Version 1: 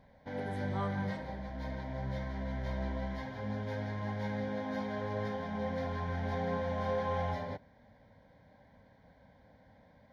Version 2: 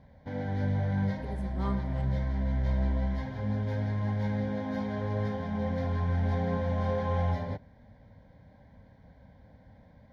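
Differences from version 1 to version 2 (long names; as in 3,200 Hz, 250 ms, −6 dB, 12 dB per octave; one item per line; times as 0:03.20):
speech: entry +0.85 s
master: add low-shelf EQ 210 Hz +11.5 dB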